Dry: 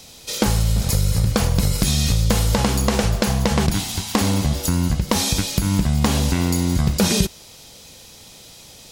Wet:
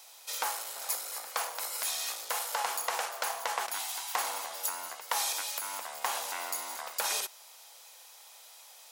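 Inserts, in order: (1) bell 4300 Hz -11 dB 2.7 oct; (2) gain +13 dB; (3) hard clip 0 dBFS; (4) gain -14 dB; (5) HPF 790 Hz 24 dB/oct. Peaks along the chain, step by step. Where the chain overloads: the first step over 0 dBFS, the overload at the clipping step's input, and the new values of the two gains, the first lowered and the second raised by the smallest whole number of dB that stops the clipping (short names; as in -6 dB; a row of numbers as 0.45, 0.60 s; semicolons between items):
-5.5, +7.5, 0.0, -14.0, -13.0 dBFS; step 2, 7.5 dB; step 2 +5 dB, step 4 -6 dB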